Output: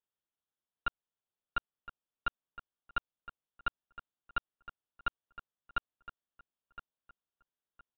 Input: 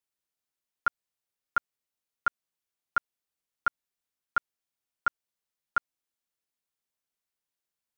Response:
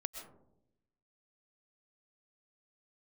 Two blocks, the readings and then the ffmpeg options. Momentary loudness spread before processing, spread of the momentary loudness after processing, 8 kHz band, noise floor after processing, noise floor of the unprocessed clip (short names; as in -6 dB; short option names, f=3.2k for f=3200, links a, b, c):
0 LU, 16 LU, n/a, under -85 dBFS, under -85 dBFS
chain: -filter_complex "[0:a]equalizer=f=2.2k:w=3.2:g=-14.5,aresample=8000,aeval=exprs='clip(val(0),-1,0.0355)':c=same,aresample=44100,asplit=2[a][b];[b]adelay=1014,lowpass=f=2.3k:p=1,volume=-14dB,asplit=2[c][d];[d]adelay=1014,lowpass=f=2.3k:p=1,volume=0.28,asplit=2[e][f];[f]adelay=1014,lowpass=f=2.3k:p=1,volume=0.28[g];[a][c][e][g]amix=inputs=4:normalize=0,volume=-2.5dB"